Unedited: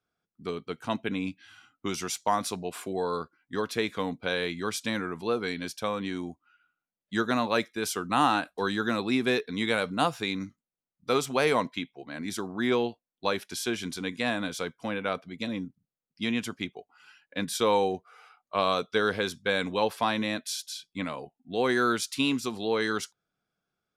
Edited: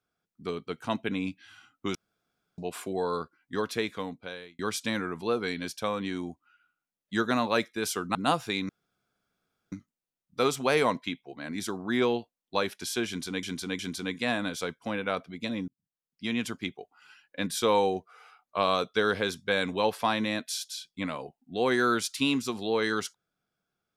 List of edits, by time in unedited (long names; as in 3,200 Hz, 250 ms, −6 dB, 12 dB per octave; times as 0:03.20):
0:01.95–0:02.58: fill with room tone
0:03.66–0:04.59: fade out
0:08.15–0:09.88: remove
0:10.42: splice in room tone 1.03 s
0:13.77–0:14.13: repeat, 3 plays
0:15.66–0:16.43: fade in